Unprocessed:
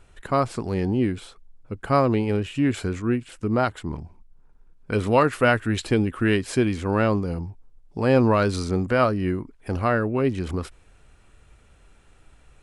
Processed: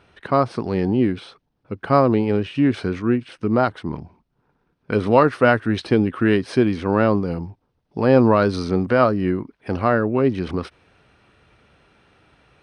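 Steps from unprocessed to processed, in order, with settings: polynomial smoothing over 15 samples; dynamic EQ 2600 Hz, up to -6 dB, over -39 dBFS, Q 1.1; HPF 120 Hz 12 dB/oct; gain +4.5 dB

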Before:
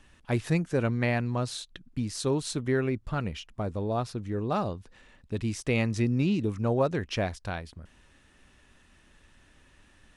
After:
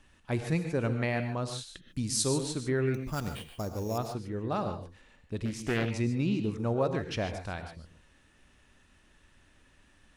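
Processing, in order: 1.88–2.41 tone controls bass +2 dB, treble +13 dB; 2.94–3.98 sample-rate reducer 6100 Hz, jitter 0%; non-linear reverb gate 0.17 s rising, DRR 7.5 dB; 5.45–5.91 Doppler distortion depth 0.59 ms; gain -3.5 dB

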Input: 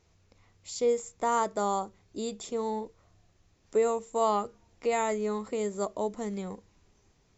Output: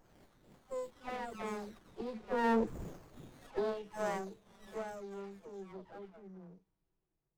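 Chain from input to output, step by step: spectral delay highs early, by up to 0.915 s; Doppler pass-by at 2.69, 22 m/s, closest 2.8 m; running maximum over 17 samples; gain +13.5 dB

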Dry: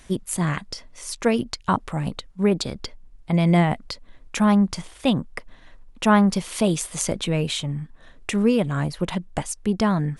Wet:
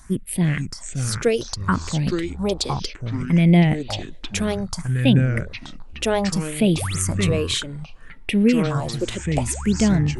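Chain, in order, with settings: phaser stages 4, 0.63 Hz, lowest notch 150–1200 Hz; painted sound rise, 6.76–6.98, 240–8700 Hz -36 dBFS; echoes that change speed 0.445 s, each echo -5 st, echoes 3, each echo -6 dB; gain +3.5 dB

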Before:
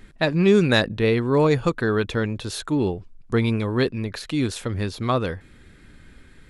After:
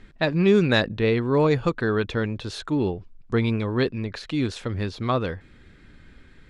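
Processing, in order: LPF 5600 Hz 12 dB/oct; gain -1.5 dB

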